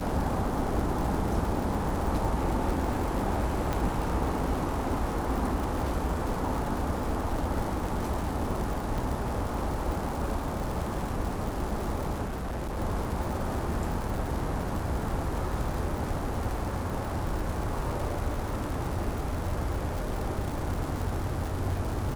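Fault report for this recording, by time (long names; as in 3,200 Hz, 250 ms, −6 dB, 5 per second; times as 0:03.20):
surface crackle 190 per second −33 dBFS
0:03.73: click −15 dBFS
0:08.98: drop-out 3.6 ms
0:12.24–0:12.78: clipping −30 dBFS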